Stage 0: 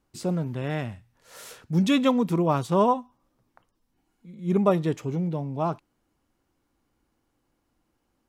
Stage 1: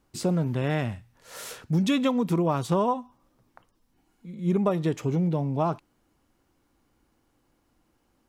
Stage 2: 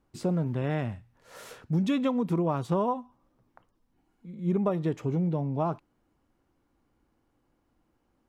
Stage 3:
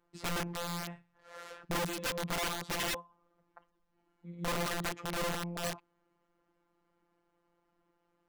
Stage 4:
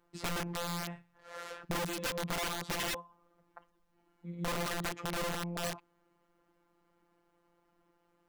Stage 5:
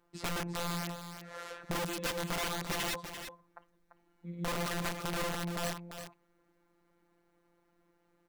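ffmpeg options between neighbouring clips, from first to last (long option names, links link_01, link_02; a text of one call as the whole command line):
ffmpeg -i in.wav -af "acompressor=threshold=-25dB:ratio=6,volume=4.5dB" out.wav
ffmpeg -i in.wav -af "highshelf=frequency=2800:gain=-9.5,volume=-2.5dB" out.wav
ffmpeg -i in.wav -filter_complex "[0:a]asplit=2[link_01][link_02];[link_02]highpass=frequency=720:poles=1,volume=10dB,asoftclip=type=tanh:threshold=-15dB[link_03];[link_01][link_03]amix=inputs=2:normalize=0,lowpass=frequency=1900:poles=1,volume=-6dB,afftfilt=real='hypot(re,im)*cos(PI*b)':imag='0':win_size=1024:overlap=0.75,aeval=exprs='(mod(28.2*val(0)+1,2)-1)/28.2':channel_layout=same" out.wav
ffmpeg -i in.wav -af "acompressor=threshold=-37dB:ratio=4,volume=3.5dB" out.wav
ffmpeg -i in.wav -af "aecho=1:1:342:0.355" out.wav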